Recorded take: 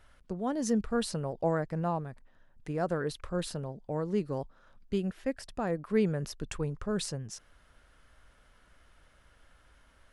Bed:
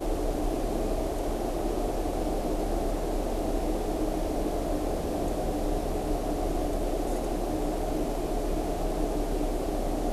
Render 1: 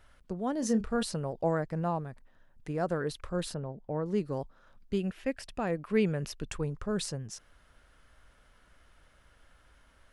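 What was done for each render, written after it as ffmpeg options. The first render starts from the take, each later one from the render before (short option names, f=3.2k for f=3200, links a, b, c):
-filter_complex "[0:a]asettb=1/sr,asplit=3[a][b][c];[a]atrim=end=0.594[d];[b]atrim=start=0.59:end=1.03,asetpts=PTS-STARTPTS,afade=t=in:d=0.004:c=qsin,afade=t=out:st=0.436:d=0.004:c=qsin,asplit=2[e][f];[f]adelay=31,volume=-10dB[g];[e][g]amix=inputs=2:normalize=0,atrim=end_sample=19404[h];[c]atrim=start=1.026[i];[d][h]acrossfade=d=0.004:c1=hsin:c2=qsin[j];[j][i]acrossfade=d=0.004:c1=qsin:c2=hsin,asettb=1/sr,asplit=3[k][l][m];[k]atrim=end=3.544[n];[l]atrim=start=3.54:end=4.06,asetpts=PTS-STARTPTS,afade=t=in:d=0.004:c=qsin,afade=t=out:st=0.516:d=0.004:c=qsin,lowpass=2.2k[o];[m]atrim=start=4.056[p];[n][o]acrossfade=d=0.004:c1=hsin:c2=qsin[q];[q][p]acrossfade=d=0.004:c1=qsin:c2=hsin,asettb=1/sr,asplit=3[r][s][t];[r]atrim=end=5.004[u];[s]atrim=start=5:end=6.45,asetpts=PTS-STARTPTS,afade=t=in:d=0.004:c=qsin,afade=t=out:st=1.446:d=0.004:c=qsin,equalizer=f=2.6k:w=2.1:g=7[v];[t]atrim=start=6.446[w];[u][v]acrossfade=d=0.004:c1=hsin:c2=qsin[x];[x][w]acrossfade=d=0.004:c1=qsin:c2=hsin"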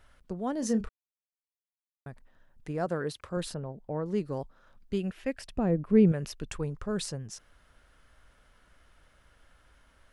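-filter_complex "[0:a]asettb=1/sr,asplit=3[a][b][c];[a]atrim=end=2.864[d];[b]atrim=start=2.86:end=3.37,asetpts=PTS-STARTPTS,afade=t=in:d=0.004:c=qsin,afade=t=out:st=0.506:d=0.004:c=qsin,highpass=88[e];[c]atrim=start=3.366[f];[d][e]acrossfade=d=0.004:c1=hsin:c2=qsin[g];[g][f]acrossfade=d=0.004:c1=qsin:c2=hsin,asettb=1/sr,asplit=3[h][i][j];[h]atrim=end=5.564[k];[i]atrim=start=5.56:end=6.12,asetpts=PTS-STARTPTS,afade=t=in:d=0.004:c=qsin,afade=t=out:st=0.556:d=0.004:c=qsin,tiltshelf=f=680:g=10[l];[j]atrim=start=6.116[m];[k][l]acrossfade=d=0.004:c1=hsin:c2=qsin[n];[n][m]acrossfade=d=0.004:c1=qsin:c2=hsin,asplit=3[o][p][q];[o]atrim=end=0.89,asetpts=PTS-STARTPTS,afade=t=out:st=0.886:d=0.004:c=hsin[r];[p]atrim=start=0.89:end=2.06,asetpts=PTS-STARTPTS,volume=0[s];[q]atrim=start=2.06,asetpts=PTS-STARTPTS,afade=t=in:d=0.004:c=hsin[t];[r][s][t]concat=n=3:v=0:a=1"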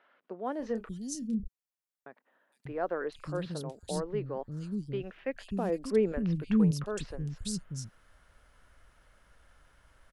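-filter_complex "[0:a]acrossover=split=270|3300[a][b][c];[c]adelay=460[d];[a]adelay=590[e];[e][b][d]amix=inputs=3:normalize=0"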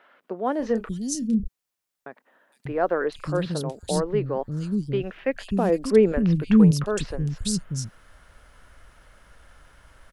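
-af "volume=9.5dB"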